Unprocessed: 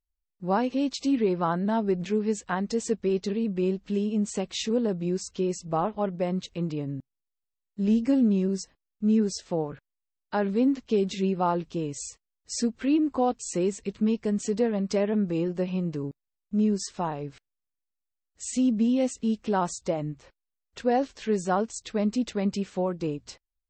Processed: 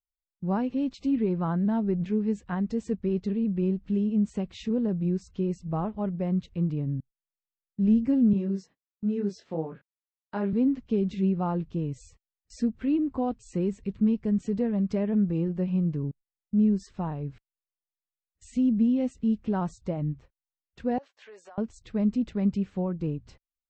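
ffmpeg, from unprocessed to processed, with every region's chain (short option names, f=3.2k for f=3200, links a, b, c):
-filter_complex "[0:a]asettb=1/sr,asplit=3[a][b][c];[a]atrim=end=8.334[d];[b]atrim=start=8.33:end=10.53,asetpts=PTS-STARTPTS,afade=t=in:d=0.004:c=qsin,afade=t=out:st=2.196:d=0.004:c=qsin,highpass=260,lowpass=6.4k,asplit=2[e][f];[f]adelay=25,volume=-3dB[g];[e][g]amix=inputs=2:normalize=0,atrim=end_sample=97020[h];[c]atrim=start=10.526[i];[d][h]acrossfade=d=0.004:c1=hsin:c2=qsin[j];[j][i]acrossfade=d=0.004:c1=qsin:c2=hsin,asettb=1/sr,asplit=3[k][l][m];[k]atrim=end=20.984[n];[l]atrim=start=20.98:end=21.58,asetpts=PTS-STARTPTS,afade=t=in:d=0.004:c=qsin,afade=t=out:st=0.596:d=0.004:c=qsin,highpass=f=590:w=0.5412,highpass=f=590:w=1.3066,agate=range=-33dB:threshold=-47dB:ratio=3:release=100:detection=peak,acompressor=threshold=-38dB:ratio=12:attack=3.2:release=140:knee=1:detection=peak[o];[m]atrim=start=21.576[p];[n][o]acrossfade=d=0.004:c1=hsin:c2=qsin[q];[q][p]acrossfade=d=0.004:c1=qsin:c2=hsin,agate=range=-20dB:threshold=-47dB:ratio=16:detection=peak,bass=f=250:g=14,treble=f=4k:g=-12,volume=-7dB"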